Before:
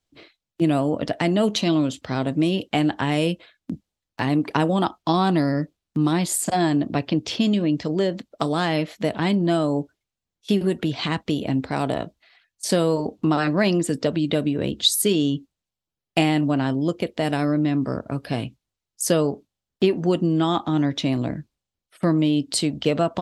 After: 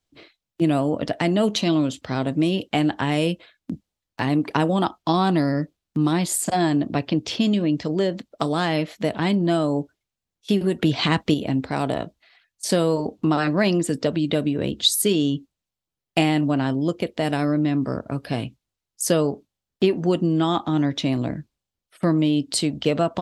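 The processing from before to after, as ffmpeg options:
ffmpeg -i in.wav -filter_complex "[0:a]asplit=3[link_01][link_02][link_03];[link_01]atrim=end=10.822[link_04];[link_02]atrim=start=10.818:end=11.342,asetpts=PTS-STARTPTS,volume=4.5dB[link_05];[link_03]atrim=start=11.338[link_06];[link_04][link_05]acrossfade=duration=0.004:curve1=hsin:curve2=hsin[link_07];[link_07][link_06]acrossfade=duration=0.004:curve1=hsin:curve2=hsin" out.wav

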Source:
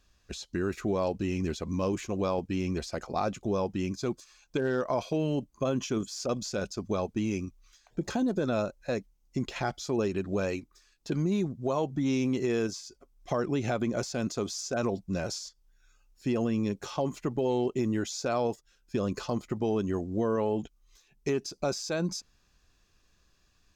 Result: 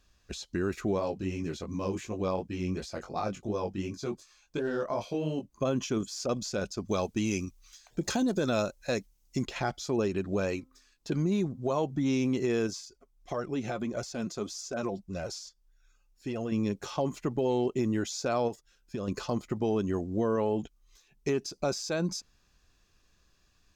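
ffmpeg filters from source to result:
ffmpeg -i in.wav -filter_complex "[0:a]asplit=3[link_01][link_02][link_03];[link_01]afade=type=out:start_time=0.98:duration=0.02[link_04];[link_02]flanger=delay=18:depth=3.8:speed=2.8,afade=type=in:start_time=0.98:duration=0.02,afade=type=out:start_time=5.49:duration=0.02[link_05];[link_03]afade=type=in:start_time=5.49:duration=0.02[link_06];[link_04][link_05][link_06]amix=inputs=3:normalize=0,asettb=1/sr,asplit=3[link_07][link_08][link_09];[link_07]atrim=end=6.884[link_10];[link_08]atrim=start=6.88:end=9.45,asetpts=PTS-STARTPTS,afade=type=in:duration=0.004:curve=qsin,afade=type=out:start_time=2.566:duration=0.004:curve=qsin,highshelf=frequency=2800:gain=10[link_11];[link_09]atrim=start=9.446[link_12];[link_10][link_11]acrossfade=duration=0.004:curve1=hsin:curve2=qsin[link_13];[link_13][link_12]acrossfade=duration=0.004:curve1=qsin:curve2=hsin,asettb=1/sr,asplit=3[link_14][link_15][link_16];[link_14]atrim=end=10.424[link_17];[link_15]atrim=start=10.42:end=11.71,asetpts=PTS-STARTPTS,afade=type=in:duration=0.004:curve=qsin,afade=type=out:start_time=1.286:duration=0.004:curve=qsin,bandreject=frequency=260.3:width_type=h:width=4,bandreject=frequency=520.6:width_type=h:width=4,bandreject=frequency=780.9:width_type=h:width=4,bandreject=frequency=1041.2:width_type=h:width=4,bandreject=frequency=1301.5:width_type=h:width=4[link_18];[link_16]atrim=start=11.706[link_19];[link_17][link_18]acrossfade=duration=0.004:curve1=hsin:curve2=qsin[link_20];[link_20][link_19]acrossfade=duration=0.004:curve1=qsin:curve2=hsin,asettb=1/sr,asplit=3[link_21][link_22][link_23];[link_21]atrim=end=12.854[link_24];[link_22]atrim=start=12.85:end=16.52,asetpts=PTS-STARTPTS,afade=type=in:duration=0.004:curve=qsin,afade=type=out:start_time=3.666:duration=0.004:curve=qsin,flanger=delay=1.4:depth=4.5:regen=40:speed=1.7:shape=sinusoidal[link_25];[link_23]atrim=start=16.516[link_26];[link_24][link_25]acrossfade=duration=0.004:curve1=hsin:curve2=qsin[link_27];[link_27][link_26]acrossfade=duration=0.004:curve1=qsin:curve2=hsin,asettb=1/sr,asplit=3[link_28][link_29][link_30];[link_28]atrim=end=18.484[link_31];[link_29]atrim=start=18.48:end=19.08,asetpts=PTS-STARTPTS,afade=type=in:duration=0.004:curve=qsin,afade=type=out:start_time=0.596:duration=0.004:curve=qsin,acompressor=threshold=-32dB:ratio=3:attack=3.2:release=140:knee=1:detection=peak[link_32];[link_30]atrim=start=19.076[link_33];[link_31][link_32]acrossfade=duration=0.004:curve1=hsin:curve2=qsin[link_34];[link_34][link_33]acrossfade=duration=0.004:curve1=qsin:curve2=hsin" out.wav

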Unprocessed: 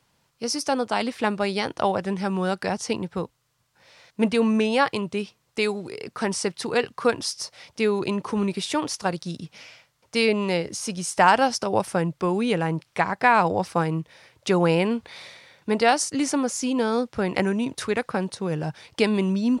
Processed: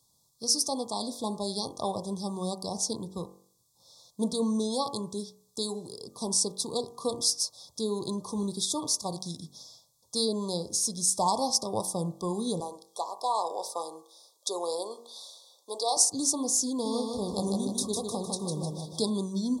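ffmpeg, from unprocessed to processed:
ffmpeg -i in.wav -filter_complex "[0:a]asettb=1/sr,asplit=3[link_01][link_02][link_03];[link_01]atrim=end=12.604[link_04];[link_02]atrim=start=12.6:end=15.97,asetpts=PTS-STARTPTS,afade=type=in:duration=0.004:curve=qsin,afade=type=out:start_time=3.366:duration=0.004:curve=qsin,highpass=frequency=430:width=0.5412,highpass=frequency=430:width=1.3066[link_05];[link_03]atrim=start=15.966[link_06];[link_04][link_05]acrossfade=duration=0.004:curve1=hsin:curve2=qsin[link_07];[link_07][link_06]acrossfade=duration=0.004:curve1=qsin:curve2=hsin,asettb=1/sr,asplit=3[link_08][link_09][link_10];[link_08]atrim=end=16.704[link_11];[link_09]atrim=start=16.7:end=19.1,asetpts=PTS-STARTPTS,afade=type=in:duration=0.004:curve=qsin,afade=type=out:start_time=2.396:duration=0.004:curve=qsin,aecho=1:1:153|306|459|612|765|918:0.631|0.297|0.139|0.0655|0.0308|0.0145,atrim=end_sample=105840[link_12];[link_10]atrim=start=19.096[link_13];[link_11][link_12]acrossfade=duration=0.004:curve1=hsin:curve2=qsin[link_14];[link_14][link_13]acrossfade=duration=0.004:curve1=qsin:curve2=hsin,afftfilt=real='re*(1-between(b*sr/4096,1200,3300))':imag='im*(1-between(b*sr/4096,1200,3300))':win_size=4096:overlap=0.75,bass=frequency=250:gain=3,treble=frequency=4000:gain=15,bandreject=frequency=47.07:width_type=h:width=4,bandreject=frequency=94.14:width_type=h:width=4,bandreject=frequency=141.21:width_type=h:width=4,bandreject=frequency=188.28:width_type=h:width=4,bandreject=frequency=235.35:width_type=h:width=4,bandreject=frequency=282.42:width_type=h:width=4,bandreject=frequency=329.49:width_type=h:width=4,bandreject=frequency=376.56:width_type=h:width=4,bandreject=frequency=423.63:width_type=h:width=4,bandreject=frequency=470.7:width_type=h:width=4,bandreject=frequency=517.77:width_type=h:width=4,bandreject=frequency=564.84:width_type=h:width=4,bandreject=frequency=611.91:width_type=h:width=4,bandreject=frequency=658.98:width_type=h:width=4,bandreject=frequency=706.05:width_type=h:width=4,bandreject=frequency=753.12:width_type=h:width=4,bandreject=frequency=800.19:width_type=h:width=4,bandreject=frequency=847.26:width_type=h:width=4,bandreject=frequency=894.33:width_type=h:width=4,bandreject=frequency=941.4:width_type=h:width=4,bandreject=frequency=988.47:width_type=h:width=4,bandreject=frequency=1035.54:width_type=h:width=4,bandreject=frequency=1082.61:width_type=h:width=4,bandreject=frequency=1129.68:width_type=h:width=4,bandreject=frequency=1176.75:width_type=h:width=4,bandreject=frequency=1223.82:width_type=h:width=4,bandreject=frequency=1270.89:width_type=h:width=4,bandreject=frequency=1317.96:width_type=h:width=4,bandreject=frequency=1365.03:width_type=h:width=4,bandreject=frequency=1412.1:width_type=h:width=4,bandreject=frequency=1459.17:width_type=h:width=4,bandreject=frequency=1506.24:width_type=h:width=4,bandreject=frequency=1553.31:width_type=h:width=4,bandreject=frequency=1600.38:width_type=h:width=4,volume=-8.5dB" out.wav

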